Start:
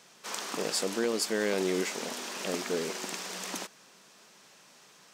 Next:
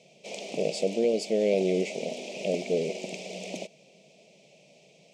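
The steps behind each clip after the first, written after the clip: FFT filter 100 Hz 0 dB, 150 Hz +12 dB, 290 Hz +2 dB, 640 Hz +13 dB, 1.1 kHz -23 dB, 1.6 kHz -29 dB, 2.3 kHz +6 dB, 3.9 kHz -2 dB, 7.7 kHz -5 dB, 13 kHz -21 dB; trim -2.5 dB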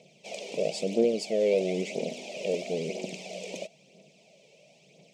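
phaser 1 Hz, delay 2.3 ms, feedback 47%; trim -2 dB

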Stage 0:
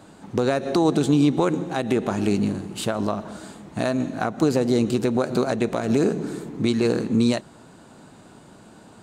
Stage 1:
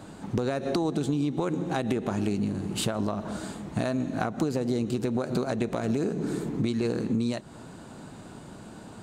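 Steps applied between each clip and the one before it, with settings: bass shelf 180 Hz +5.5 dB; compression, threshold -26 dBFS, peak gain reduction 13 dB; trim +1.5 dB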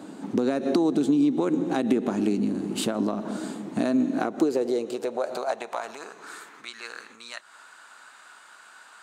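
high-pass sweep 260 Hz -> 1.4 kHz, 4.02–6.47 s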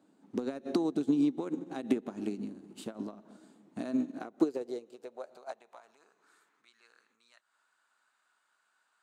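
upward expansion 2.5:1, over -32 dBFS; trim -3 dB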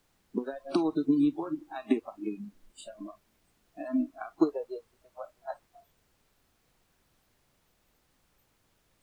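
added noise pink -47 dBFS; dynamic bell 1.1 kHz, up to +4 dB, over -50 dBFS, Q 1.3; spectral noise reduction 26 dB; trim +2.5 dB

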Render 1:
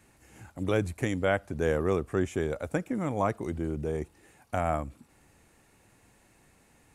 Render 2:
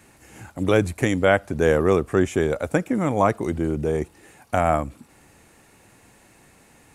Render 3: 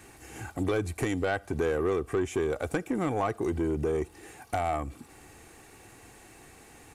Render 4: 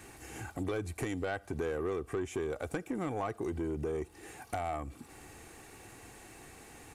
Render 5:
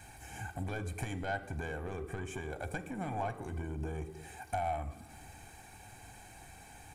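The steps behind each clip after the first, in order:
bass shelf 82 Hz -6.5 dB; trim +9 dB
comb 2.6 ms, depth 42%; compression 3:1, threshold -26 dBFS, peak gain reduction 11 dB; saturation -21 dBFS, distortion -15 dB; trim +1 dB
compression 1.5:1, threshold -44 dBFS, peak gain reduction 7 dB
reverberation RT60 1.0 s, pre-delay 3 ms, DRR 11 dB; trim -4 dB

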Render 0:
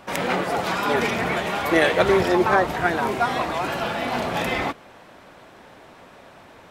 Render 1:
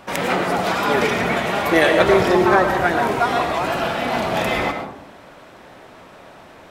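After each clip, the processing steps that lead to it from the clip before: reverberation RT60 0.75 s, pre-delay 70 ms, DRR 5.5 dB; trim +2.5 dB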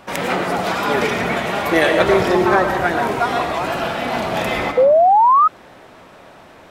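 painted sound rise, 4.77–5.48 s, 490–1300 Hz -11 dBFS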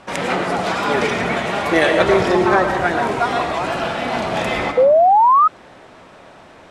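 low-pass 10 kHz 24 dB/octave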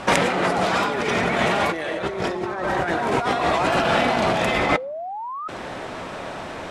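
compressor with a negative ratio -26 dBFS, ratio -1; trim +2.5 dB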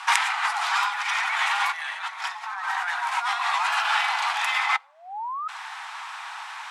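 steep high-pass 820 Hz 72 dB/octave

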